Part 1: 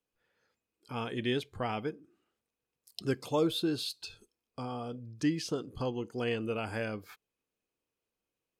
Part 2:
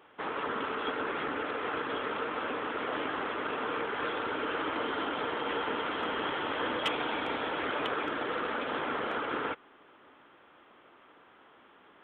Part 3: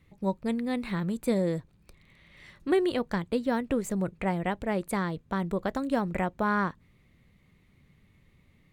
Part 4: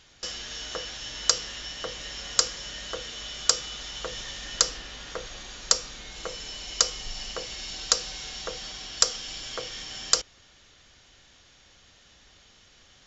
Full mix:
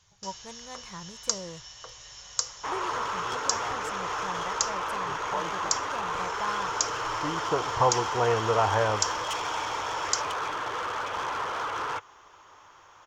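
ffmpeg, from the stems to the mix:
-filter_complex "[0:a]lowpass=1.4k,equalizer=f=870:t=o:w=2.5:g=10.5,adelay=2000,volume=2dB[a];[1:a]highshelf=f=5.4k:g=10,asoftclip=type=hard:threshold=-31dB,adelay=2450,volume=-1dB[b];[2:a]volume=-12dB,asplit=2[c][d];[3:a]volume=-14dB[e];[d]apad=whole_len=467268[f];[a][f]sidechaincompress=threshold=-56dB:ratio=8:attack=16:release=641[g];[g][b][c][e]amix=inputs=4:normalize=0,equalizer=f=100:t=o:w=0.67:g=9,equalizer=f=250:t=o:w=0.67:g=-12,equalizer=f=1k:t=o:w=0.67:g=11,equalizer=f=6.3k:t=o:w=0.67:g=11"

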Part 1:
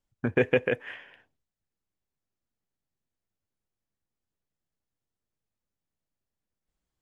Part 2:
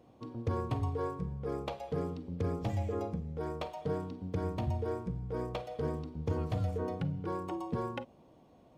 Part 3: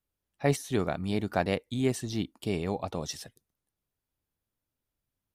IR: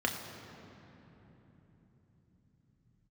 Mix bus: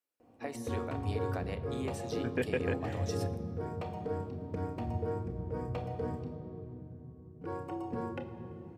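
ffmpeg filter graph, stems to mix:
-filter_complex "[0:a]adelay=2000,volume=-10dB[a];[1:a]equalizer=f=3.3k:t=o:w=0.77:g=-2.5,adelay=200,volume=-9dB,asplit=3[b][c][d];[b]atrim=end=6.34,asetpts=PTS-STARTPTS,afade=t=out:st=6.336:d=0.004:c=hsin[e];[c]atrim=start=6.34:end=7.41,asetpts=PTS-STARTPTS,volume=0[f];[d]atrim=start=7.41,asetpts=PTS-STARTPTS,afade=t=in:d=0.004:c=hsin[g];[e][f][g]concat=n=3:v=0:a=1,asplit=2[h][i];[i]volume=-4dB[j];[2:a]highpass=340,acompressor=threshold=-36dB:ratio=4,volume=-5.5dB,asplit=2[k][l];[l]volume=-12dB[m];[3:a]atrim=start_sample=2205[n];[j][m]amix=inputs=2:normalize=0[o];[o][n]afir=irnorm=-1:irlink=0[p];[a][h][k][p]amix=inputs=4:normalize=0"

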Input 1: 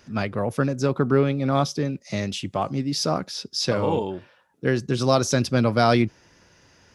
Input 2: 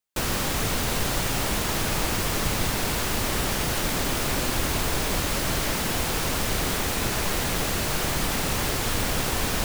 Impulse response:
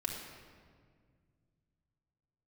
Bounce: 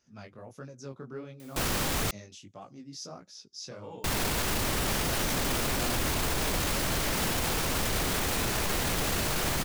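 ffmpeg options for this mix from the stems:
-filter_complex "[0:a]equalizer=f=6.4k:w=2.2:g=10.5,flanger=delay=16:depth=7.1:speed=1.5,volume=-18dB[a];[1:a]acompressor=mode=upward:threshold=-35dB:ratio=2.5,adelay=1400,volume=0dB,asplit=3[b][c][d];[b]atrim=end=2.11,asetpts=PTS-STARTPTS,afade=t=out:st=2.106:d=0.004:c=hsin[e];[c]atrim=start=2.11:end=4.04,asetpts=PTS-STARTPTS,volume=0[f];[d]atrim=start=4.04,asetpts=PTS-STARTPTS,afade=t=in:d=0.004:c=hsin[g];[e][f][g]concat=n=3:v=0:a=1[h];[a][h]amix=inputs=2:normalize=0,alimiter=limit=-20dB:level=0:latency=1:release=10"

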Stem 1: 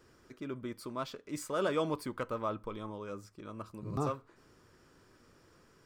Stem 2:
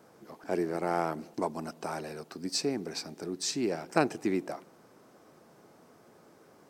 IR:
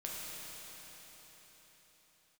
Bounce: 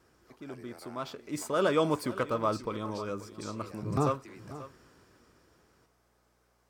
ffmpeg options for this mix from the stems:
-filter_complex "[0:a]dynaudnorm=f=220:g=11:m=10dB,volume=-4dB,asplit=2[a][b];[b]volume=-16dB[c];[1:a]highpass=f=1.1k:p=1,acompressor=threshold=-39dB:ratio=5,aeval=exprs='val(0)+0.000562*(sin(2*PI*60*n/s)+sin(2*PI*2*60*n/s)/2+sin(2*PI*3*60*n/s)/3+sin(2*PI*4*60*n/s)/4+sin(2*PI*5*60*n/s)/5)':c=same,volume=-8dB[d];[c]aecho=0:1:537:1[e];[a][d][e]amix=inputs=3:normalize=0,highpass=40"

